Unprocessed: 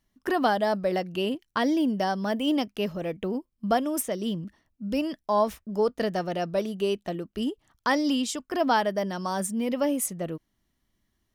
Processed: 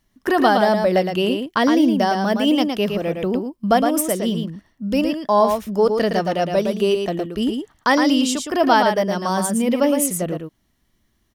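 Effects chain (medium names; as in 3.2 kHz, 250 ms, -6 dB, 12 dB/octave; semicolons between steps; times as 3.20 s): delay 113 ms -5.5 dB; trim +7.5 dB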